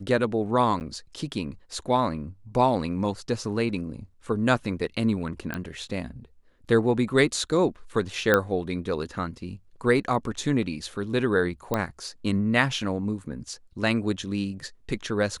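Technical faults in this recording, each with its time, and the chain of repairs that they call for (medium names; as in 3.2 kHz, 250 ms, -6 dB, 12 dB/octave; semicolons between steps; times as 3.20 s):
0.80–0.81 s: dropout 9.7 ms
5.54 s: pop -16 dBFS
8.34 s: pop -7 dBFS
11.74 s: pop -11 dBFS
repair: de-click; interpolate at 0.80 s, 9.7 ms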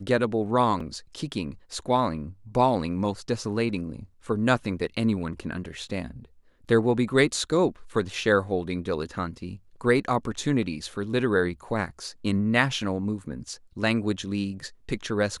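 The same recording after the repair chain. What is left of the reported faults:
nothing left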